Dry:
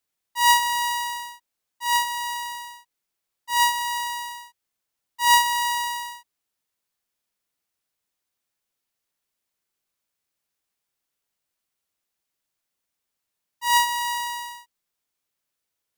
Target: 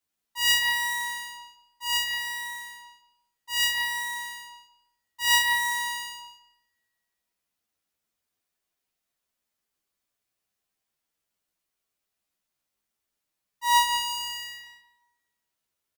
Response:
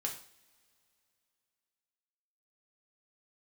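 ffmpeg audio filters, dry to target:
-filter_complex "[0:a]asplit=2[s0][s1];[s1]adelay=177,lowpass=f=3200:p=1,volume=0.631,asplit=2[s2][s3];[s3]adelay=177,lowpass=f=3200:p=1,volume=0.24,asplit=2[s4][s5];[s5]adelay=177,lowpass=f=3200:p=1,volume=0.24[s6];[s0][s2][s4][s6]amix=inputs=4:normalize=0,asplit=2[s7][s8];[1:a]atrim=start_sample=2205,asetrate=70560,aresample=44100,lowshelf=f=470:g=6.5[s9];[s8][s9]afir=irnorm=-1:irlink=0,volume=0.596[s10];[s7][s10]amix=inputs=2:normalize=0,asplit=2[s11][s12];[s12]adelay=10.8,afreqshift=0.64[s13];[s11][s13]amix=inputs=2:normalize=1,volume=0.841"

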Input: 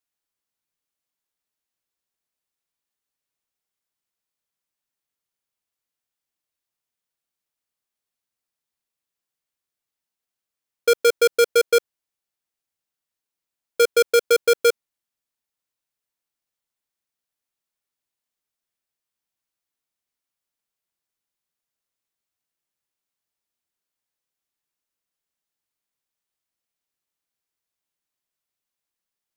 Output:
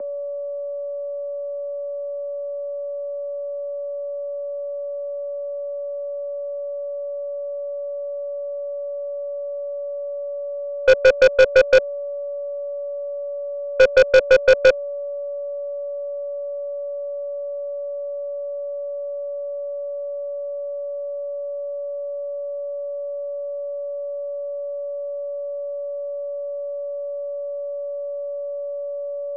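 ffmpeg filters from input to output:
-af "aeval=exprs='val(0)+0.0224*sin(2*PI*520*n/s)':c=same,highpass=f=150:t=q:w=0.5412,highpass=f=150:t=q:w=1.307,lowpass=f=2100:t=q:w=0.5176,lowpass=f=2100:t=q:w=0.7071,lowpass=f=2100:t=q:w=1.932,afreqshift=51,aeval=exprs='0.398*(cos(1*acos(clip(val(0)/0.398,-1,1)))-cos(1*PI/2))+0.0708*(cos(5*acos(clip(val(0)/0.398,-1,1)))-cos(5*PI/2))+0.02*(cos(6*acos(clip(val(0)/0.398,-1,1)))-cos(6*PI/2))+0.0251*(cos(7*acos(clip(val(0)/0.398,-1,1)))-cos(7*PI/2))':c=same,volume=1.68"

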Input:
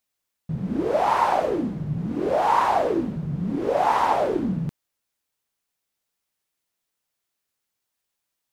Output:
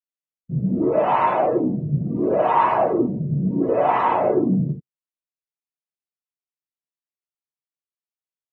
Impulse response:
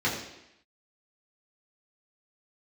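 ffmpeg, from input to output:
-filter_complex "[1:a]atrim=start_sample=2205,afade=t=out:st=0.19:d=0.01,atrim=end_sample=8820,asetrate=57330,aresample=44100[s0];[0:a][s0]afir=irnorm=-1:irlink=0,afftdn=nr=23:nf=-28,volume=0.422"

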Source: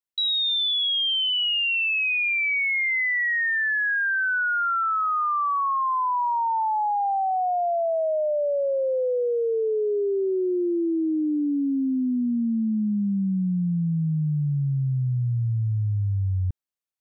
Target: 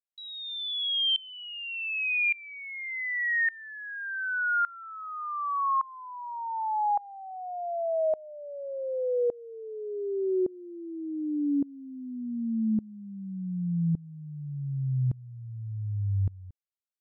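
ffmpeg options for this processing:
-af "aeval=exprs='val(0)*pow(10,-23*if(lt(mod(-0.86*n/s,1),2*abs(-0.86)/1000),1-mod(-0.86*n/s,1)/(2*abs(-0.86)/1000),(mod(-0.86*n/s,1)-2*abs(-0.86)/1000)/(1-2*abs(-0.86)/1000))/20)':c=same"

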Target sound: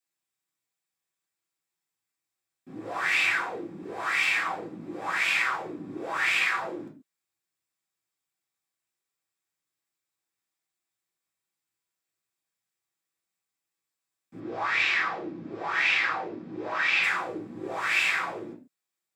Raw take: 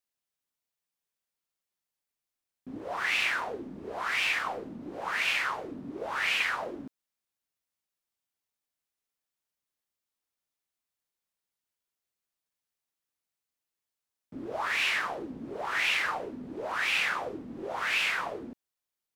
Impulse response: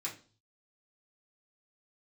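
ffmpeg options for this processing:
-filter_complex "[0:a]asplit=3[s0][s1][s2];[s0]afade=t=out:st=14.39:d=0.02[s3];[s1]lowpass=f=5800:w=0.5412,lowpass=f=5800:w=1.3066,afade=t=in:st=14.39:d=0.02,afade=t=out:st=17.02:d=0.02[s4];[s2]afade=t=in:st=17.02:d=0.02[s5];[s3][s4][s5]amix=inputs=3:normalize=0[s6];[1:a]atrim=start_sample=2205,atrim=end_sample=6615[s7];[s6][s7]afir=irnorm=-1:irlink=0,volume=1.26"

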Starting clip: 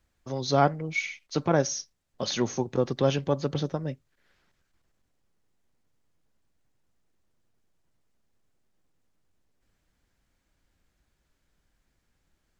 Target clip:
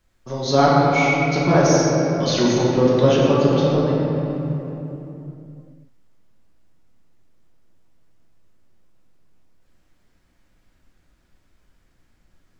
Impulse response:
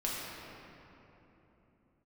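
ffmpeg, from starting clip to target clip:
-filter_complex "[1:a]atrim=start_sample=2205[s0];[0:a][s0]afir=irnorm=-1:irlink=0,volume=1.68"

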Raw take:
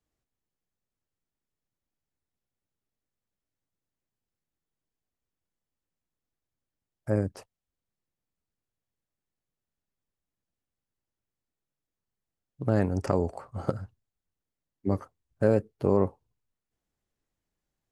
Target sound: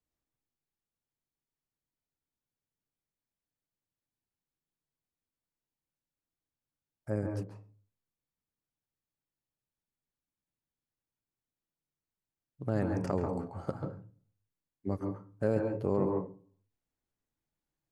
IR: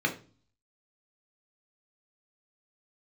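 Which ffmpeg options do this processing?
-filter_complex "[0:a]asplit=2[s0][s1];[s1]equalizer=f=970:w=2.2:g=9.5[s2];[1:a]atrim=start_sample=2205,lowshelf=f=220:g=5.5,adelay=136[s3];[s2][s3]afir=irnorm=-1:irlink=0,volume=0.168[s4];[s0][s4]amix=inputs=2:normalize=0,volume=0.447"

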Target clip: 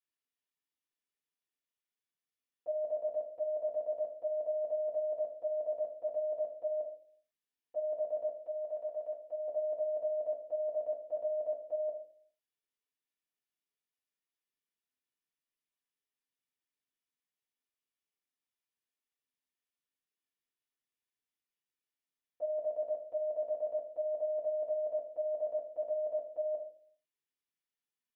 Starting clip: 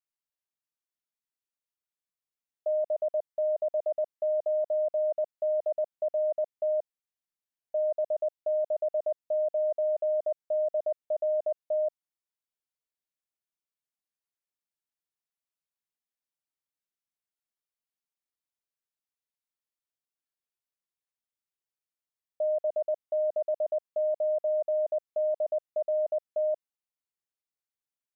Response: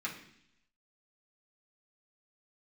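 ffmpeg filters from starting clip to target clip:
-filter_complex "[0:a]asettb=1/sr,asplit=3[s0][s1][s2];[s0]atrim=end=8.414[s3];[s1]atrim=start=8.41:end=9.48,asetpts=PTS-STARTPTS,afade=t=in:d=0.004:c=qsin,afade=t=out:st=1.066:d=0.004:c=qsin,lowshelf=f=440:g=-10[s4];[s2]atrim=start=9.476[s5];[s3][s4]acrossfade=d=0.004:c1=hsin:c2=qsin[s6];[s6][s5]acrossfade=d=0.004:c1=qsin:c2=hsin[s7];[1:a]atrim=start_sample=2205,asetrate=61740,aresample=44100[s8];[s7][s8]afir=irnorm=-1:irlink=0"

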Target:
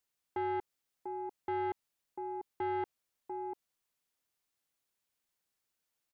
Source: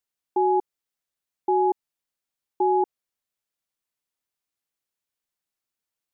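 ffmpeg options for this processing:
-af "alimiter=level_in=1.12:limit=0.0631:level=0:latency=1:release=23,volume=0.891,aecho=1:1:694:0.355,asoftclip=type=tanh:threshold=0.0266,volume=1.19"

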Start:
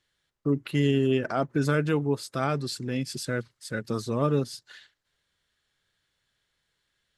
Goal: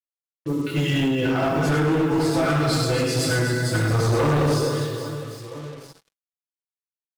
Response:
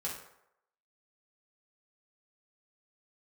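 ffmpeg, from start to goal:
-filter_complex "[0:a]dynaudnorm=f=180:g=9:m=3.16,flanger=delay=0.3:depth=2.2:regen=-16:speed=0.84:shape=triangular,aecho=1:1:100|250|475|812.5|1319:0.631|0.398|0.251|0.158|0.1[s0];[1:a]atrim=start_sample=2205,asetrate=28665,aresample=44100[s1];[s0][s1]afir=irnorm=-1:irlink=0,acrusher=bits=6:mix=0:aa=0.5,asettb=1/sr,asplit=3[s2][s3][s4];[s2]atrim=end=1.034[s5];[s3]atrim=start=1.03:end=3.66,asetpts=PTS-STARTPTS,afade=t=in:d=0.004:c=qsin,afade=t=out:st=2.626:d=0.004:c=qsin,acompressor=threshold=0.158:ratio=6[s6];[s4]atrim=start=3.656[s7];[s5][s6]acrossfade=d=0.004:c1=hsin:c2=qsin[s8];[s8][s7]acrossfade=d=0.004:c1=qsin:c2=hsin,aecho=1:1:6.1:0.37,asoftclip=type=hard:threshold=0.141"

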